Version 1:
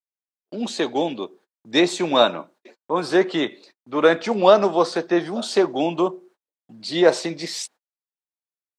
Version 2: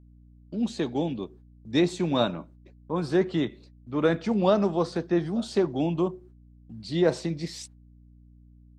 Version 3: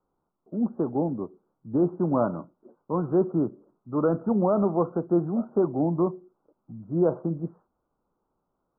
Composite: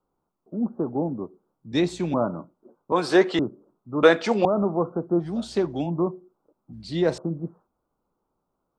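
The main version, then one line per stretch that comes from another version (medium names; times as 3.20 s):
3
1.72–2.14 s: from 2
2.92–3.39 s: from 1
4.03–4.45 s: from 1
5.24–5.86 s: from 2, crossfade 0.10 s
6.73–7.18 s: from 2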